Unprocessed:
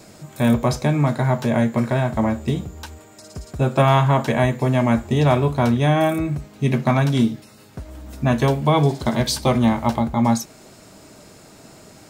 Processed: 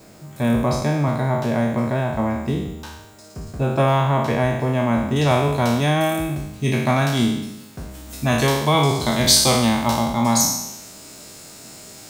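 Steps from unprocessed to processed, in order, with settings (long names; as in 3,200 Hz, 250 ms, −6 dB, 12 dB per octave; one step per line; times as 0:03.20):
peak hold with a decay on every bin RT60 0.93 s
high-shelf EQ 2,600 Hz −3.5 dB, from 0:05.16 +7 dB, from 0:07.94 +12 dB
background noise blue −56 dBFS
level −3 dB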